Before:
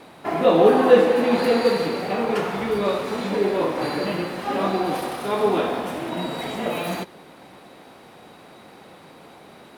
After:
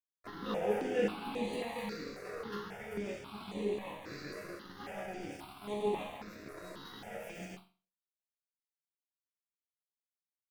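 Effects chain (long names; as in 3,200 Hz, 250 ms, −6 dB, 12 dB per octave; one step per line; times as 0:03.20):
dynamic equaliser 640 Hz, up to −5 dB, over −29 dBFS, Q 1.1
dead-zone distortion −32 dBFS
tempo change 0.93×
resonators tuned to a chord C#2 sus4, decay 0.37 s
step-sequenced phaser 3.7 Hz 850–5,200 Hz
level +2 dB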